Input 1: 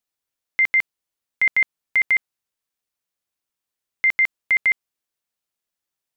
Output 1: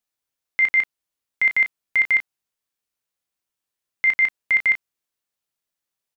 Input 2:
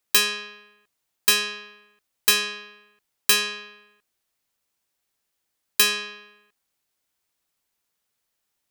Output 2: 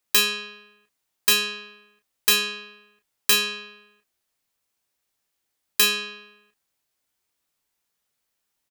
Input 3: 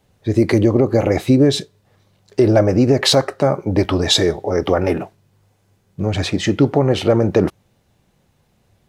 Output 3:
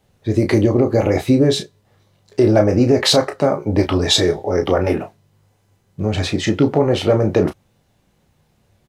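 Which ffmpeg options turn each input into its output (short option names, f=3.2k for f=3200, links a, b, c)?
-af "aecho=1:1:19|33:0.299|0.376,volume=-1dB"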